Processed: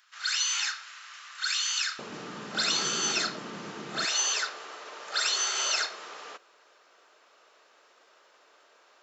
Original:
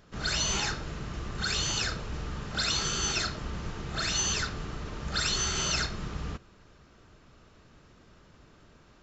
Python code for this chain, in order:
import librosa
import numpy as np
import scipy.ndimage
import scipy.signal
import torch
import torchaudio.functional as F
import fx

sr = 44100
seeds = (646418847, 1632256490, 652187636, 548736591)

y = fx.highpass(x, sr, hz=fx.steps((0.0, 1300.0), (1.99, 200.0), (4.05, 490.0)), slope=24)
y = y * librosa.db_to_amplitude(2.0)